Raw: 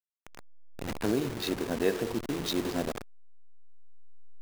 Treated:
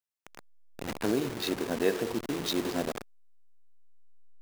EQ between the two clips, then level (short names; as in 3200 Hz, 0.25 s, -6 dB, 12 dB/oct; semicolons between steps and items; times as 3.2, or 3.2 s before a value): low shelf 99 Hz -10 dB; +1.0 dB